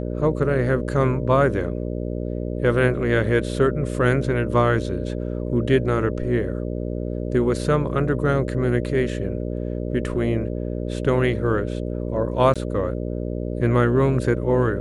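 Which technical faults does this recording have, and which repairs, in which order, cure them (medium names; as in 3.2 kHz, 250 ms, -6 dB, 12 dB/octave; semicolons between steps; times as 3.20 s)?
buzz 60 Hz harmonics 10 -27 dBFS
12.54–12.56 s: dropout 16 ms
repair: de-hum 60 Hz, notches 10; interpolate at 12.54 s, 16 ms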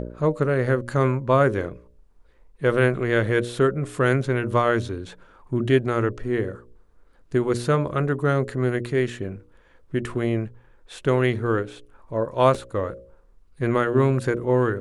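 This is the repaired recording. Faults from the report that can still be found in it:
nothing left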